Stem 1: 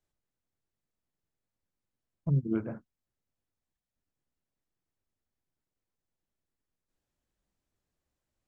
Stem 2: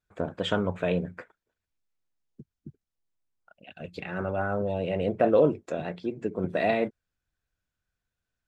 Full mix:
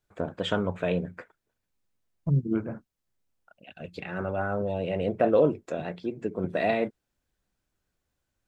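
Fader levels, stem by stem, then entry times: +3.0 dB, -0.5 dB; 0.00 s, 0.00 s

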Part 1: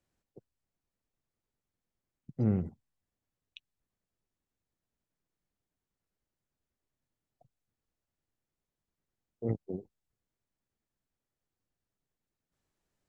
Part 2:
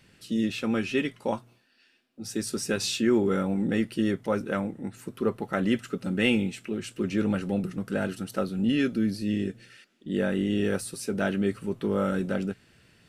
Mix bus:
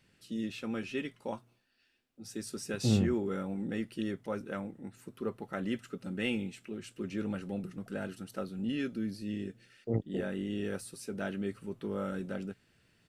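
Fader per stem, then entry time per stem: +1.0 dB, -9.5 dB; 0.45 s, 0.00 s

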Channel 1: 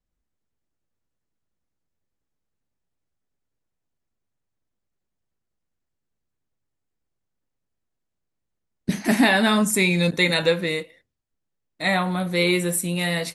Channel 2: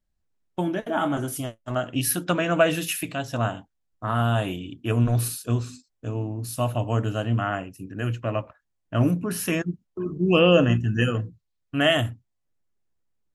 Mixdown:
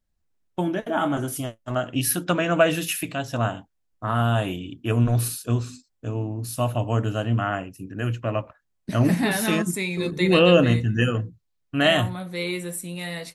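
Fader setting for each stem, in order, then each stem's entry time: -8.0 dB, +1.0 dB; 0.00 s, 0.00 s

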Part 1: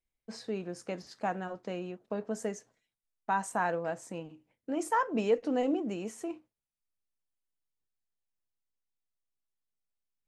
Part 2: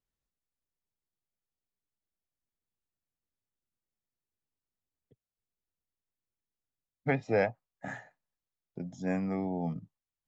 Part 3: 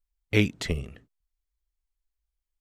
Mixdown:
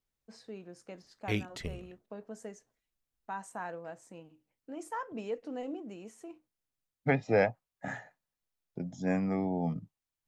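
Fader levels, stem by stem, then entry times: -9.5 dB, +1.5 dB, -10.5 dB; 0.00 s, 0.00 s, 0.95 s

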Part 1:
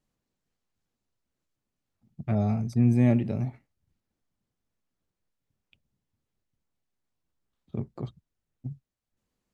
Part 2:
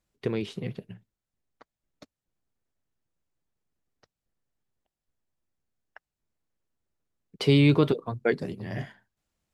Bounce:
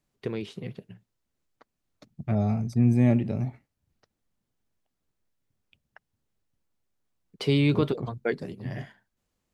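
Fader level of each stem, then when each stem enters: +0.5 dB, -3.0 dB; 0.00 s, 0.00 s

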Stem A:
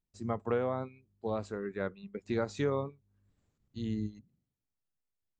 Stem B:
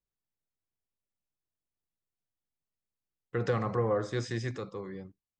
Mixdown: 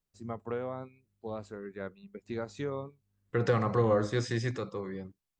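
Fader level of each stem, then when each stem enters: -4.5 dB, +2.5 dB; 0.00 s, 0.00 s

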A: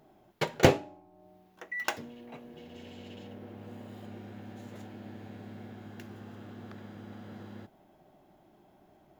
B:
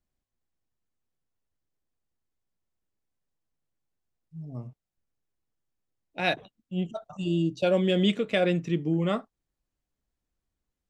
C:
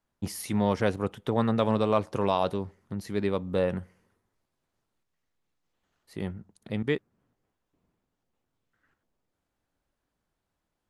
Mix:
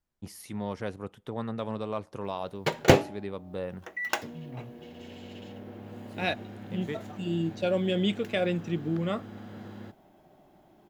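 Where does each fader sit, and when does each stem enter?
+2.5 dB, -3.5 dB, -9.0 dB; 2.25 s, 0.00 s, 0.00 s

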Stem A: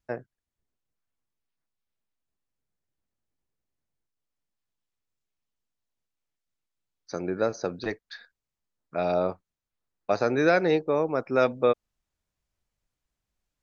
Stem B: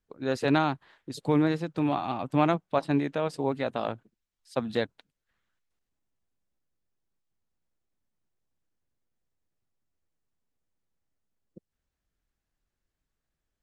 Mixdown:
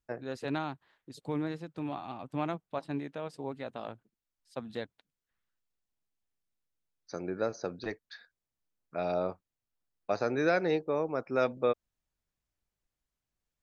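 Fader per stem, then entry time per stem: -6.0 dB, -10.0 dB; 0.00 s, 0.00 s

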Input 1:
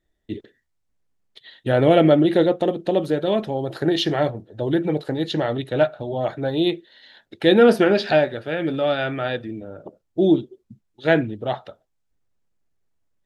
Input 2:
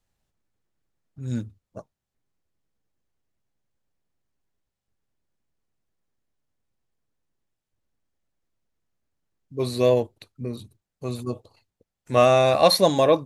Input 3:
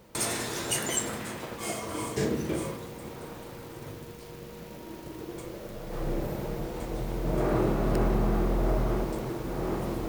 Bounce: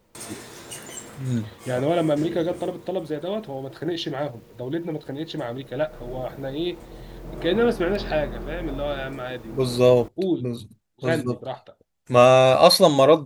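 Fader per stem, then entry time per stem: -7.0 dB, +3.0 dB, -8.0 dB; 0.00 s, 0.00 s, 0.00 s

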